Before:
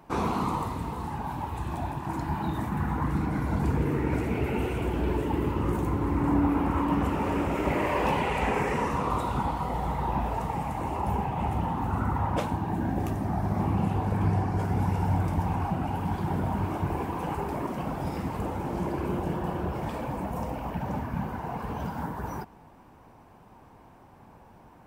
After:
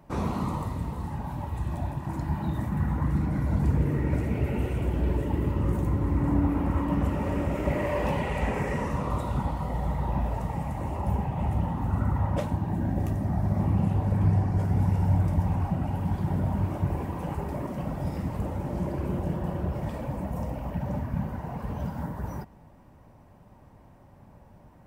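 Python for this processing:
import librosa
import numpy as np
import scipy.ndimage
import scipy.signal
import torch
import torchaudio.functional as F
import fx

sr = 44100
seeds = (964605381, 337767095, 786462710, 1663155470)

y = fx.bass_treble(x, sr, bass_db=10, treble_db=3)
y = fx.small_body(y, sr, hz=(580.0, 1900.0), ring_ms=45, db=10)
y = y * 10.0 ** (-6.0 / 20.0)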